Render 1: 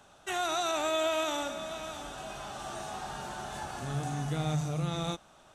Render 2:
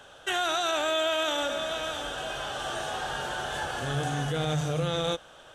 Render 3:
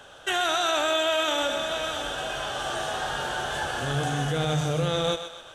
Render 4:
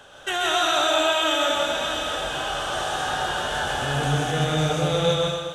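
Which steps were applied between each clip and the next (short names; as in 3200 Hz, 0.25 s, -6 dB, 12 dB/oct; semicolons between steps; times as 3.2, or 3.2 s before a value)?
thirty-one-band EQ 200 Hz -8 dB, 500 Hz +11 dB, 1600 Hz +9 dB, 3150 Hz +11 dB; limiter -23.5 dBFS, peak gain reduction 6 dB; gain +4 dB
thinning echo 0.127 s, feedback 51%, high-pass 560 Hz, level -9 dB; gain +2.5 dB
rattling part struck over -34 dBFS, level -36 dBFS; plate-style reverb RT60 1 s, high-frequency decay 0.9×, pre-delay 0.115 s, DRR -1.5 dB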